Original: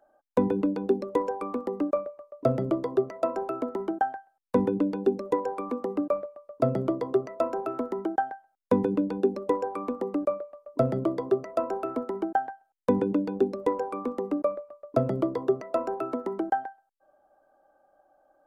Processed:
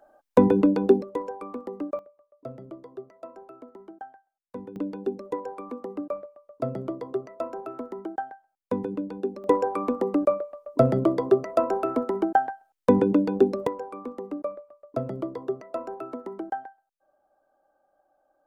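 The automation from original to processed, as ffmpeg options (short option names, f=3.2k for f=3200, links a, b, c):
-af "asetnsamples=n=441:p=0,asendcmd='1.02 volume volume -4.5dB;1.99 volume volume -15dB;4.76 volume volume -5dB;9.44 volume volume 5dB;13.67 volume volume -5dB',volume=6.5dB"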